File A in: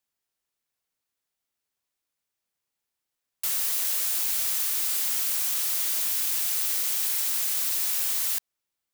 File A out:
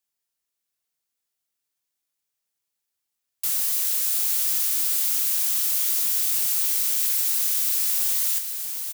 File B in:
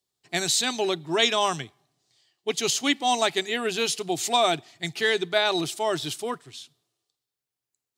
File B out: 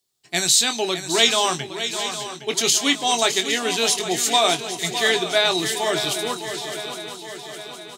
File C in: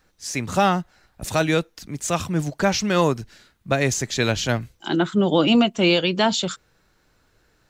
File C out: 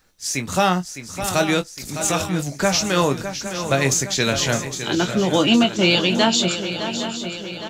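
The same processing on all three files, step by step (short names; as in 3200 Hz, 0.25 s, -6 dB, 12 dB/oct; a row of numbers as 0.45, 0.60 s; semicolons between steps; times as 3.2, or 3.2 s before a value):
high shelf 3400 Hz +7.5 dB; doubler 22 ms -9 dB; on a send: swung echo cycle 0.812 s, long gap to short 3:1, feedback 54%, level -10 dB; on the sum: match loudness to -20 LUFS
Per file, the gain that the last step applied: -5.0, +1.5, -0.5 dB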